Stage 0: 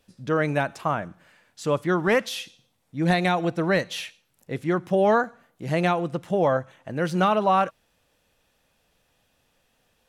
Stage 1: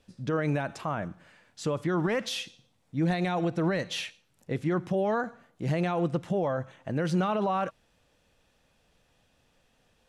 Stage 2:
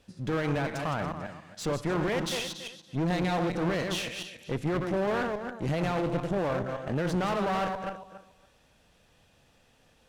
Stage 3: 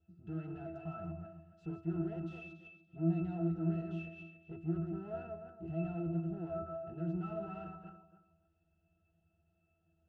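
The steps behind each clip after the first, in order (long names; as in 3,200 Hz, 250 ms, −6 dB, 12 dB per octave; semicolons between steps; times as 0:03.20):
low-pass filter 9,300 Hz 12 dB per octave; brickwall limiter −20 dBFS, peak gain reduction 9 dB; low-shelf EQ 380 Hz +4 dB; level −1 dB
feedback delay that plays each chunk backwards 141 ms, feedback 41%, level −6 dB; harmonic generator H 5 −20 dB, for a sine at −15 dBFS; asymmetric clip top −38 dBFS
resonances in every octave E, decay 0.3 s; level +2 dB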